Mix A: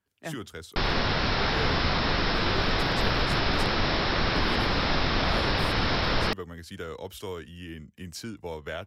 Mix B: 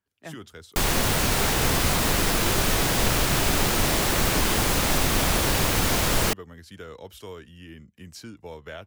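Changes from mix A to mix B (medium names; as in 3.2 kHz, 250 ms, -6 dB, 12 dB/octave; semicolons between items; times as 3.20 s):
speech -3.5 dB; background: remove rippled Chebyshev low-pass 5.4 kHz, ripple 3 dB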